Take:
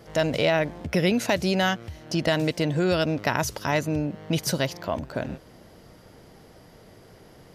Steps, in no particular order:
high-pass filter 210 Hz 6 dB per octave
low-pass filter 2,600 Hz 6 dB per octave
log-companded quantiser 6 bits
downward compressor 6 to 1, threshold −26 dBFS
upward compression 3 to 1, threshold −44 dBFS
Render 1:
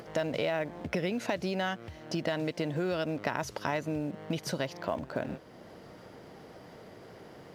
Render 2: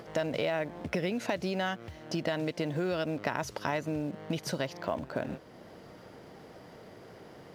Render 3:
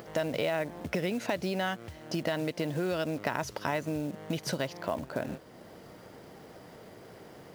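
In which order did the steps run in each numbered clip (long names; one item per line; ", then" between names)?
downward compressor, then high-pass filter, then log-companded quantiser, then low-pass filter, then upward compression
log-companded quantiser, then downward compressor, then high-pass filter, then upward compression, then low-pass filter
low-pass filter, then downward compressor, then log-companded quantiser, then high-pass filter, then upward compression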